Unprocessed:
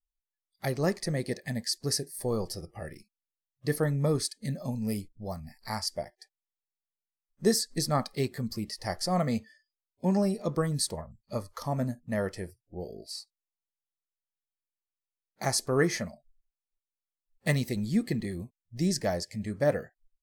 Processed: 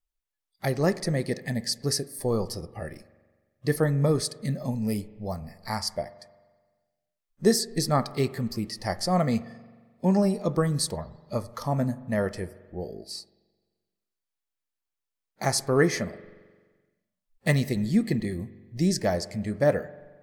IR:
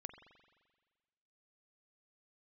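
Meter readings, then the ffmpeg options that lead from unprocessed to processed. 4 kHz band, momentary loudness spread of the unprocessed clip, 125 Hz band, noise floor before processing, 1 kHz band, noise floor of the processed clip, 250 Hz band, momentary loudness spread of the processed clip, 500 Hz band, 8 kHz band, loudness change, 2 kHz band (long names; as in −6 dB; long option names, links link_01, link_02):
+2.0 dB, 14 LU, +4.0 dB, below −85 dBFS, +4.0 dB, below −85 dBFS, +4.0 dB, 14 LU, +4.0 dB, +1.5 dB, +3.5 dB, +3.5 dB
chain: -filter_complex "[0:a]asplit=2[link_01][link_02];[1:a]atrim=start_sample=2205,highshelf=frequency=5200:gain=-11.5[link_03];[link_02][link_03]afir=irnorm=-1:irlink=0,volume=1dB[link_04];[link_01][link_04]amix=inputs=2:normalize=0"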